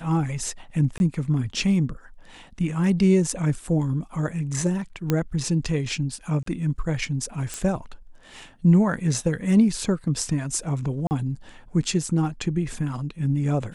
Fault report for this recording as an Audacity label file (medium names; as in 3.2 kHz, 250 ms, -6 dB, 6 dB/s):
0.980000	1.000000	dropout 21 ms
5.100000	5.100000	pop -9 dBFS
6.430000	6.460000	dropout 33 ms
7.540000	7.540000	pop
11.070000	11.110000	dropout 39 ms